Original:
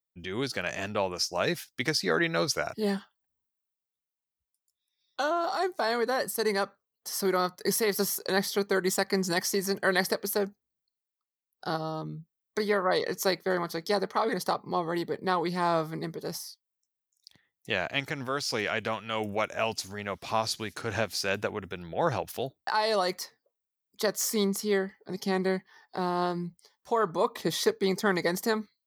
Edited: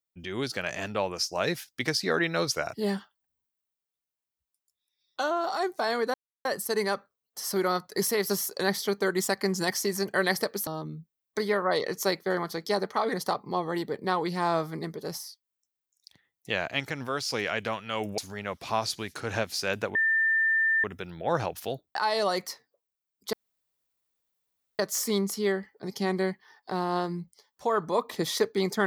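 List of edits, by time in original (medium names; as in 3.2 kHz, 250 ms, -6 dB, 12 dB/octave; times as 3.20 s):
6.14 s: insert silence 0.31 s
10.36–11.87 s: delete
19.38–19.79 s: delete
21.56 s: add tone 1.79 kHz -21 dBFS 0.89 s
24.05 s: insert room tone 1.46 s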